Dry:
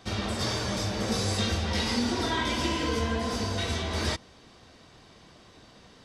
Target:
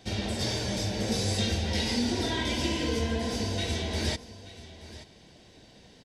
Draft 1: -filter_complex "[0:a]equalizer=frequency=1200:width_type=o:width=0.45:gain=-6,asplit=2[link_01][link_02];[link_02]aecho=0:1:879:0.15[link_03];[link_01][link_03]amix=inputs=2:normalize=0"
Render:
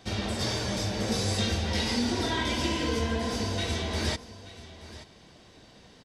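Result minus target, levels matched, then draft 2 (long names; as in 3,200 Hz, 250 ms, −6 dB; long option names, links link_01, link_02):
1,000 Hz band +3.0 dB
-filter_complex "[0:a]equalizer=frequency=1200:width_type=o:width=0.45:gain=-16,asplit=2[link_01][link_02];[link_02]aecho=0:1:879:0.15[link_03];[link_01][link_03]amix=inputs=2:normalize=0"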